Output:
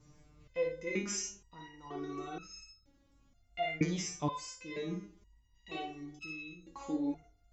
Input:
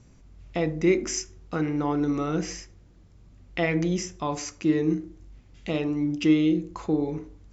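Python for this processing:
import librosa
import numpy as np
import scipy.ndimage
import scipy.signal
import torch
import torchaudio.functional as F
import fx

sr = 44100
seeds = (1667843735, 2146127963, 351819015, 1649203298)

y = fx.wow_flutter(x, sr, seeds[0], rate_hz=2.1, depth_cents=29.0)
y = fx.room_early_taps(y, sr, ms=(56, 71), db=(-5.0, -11.0))
y = fx.resonator_held(y, sr, hz=2.1, low_hz=150.0, high_hz=1300.0)
y = y * librosa.db_to_amplitude(6.5)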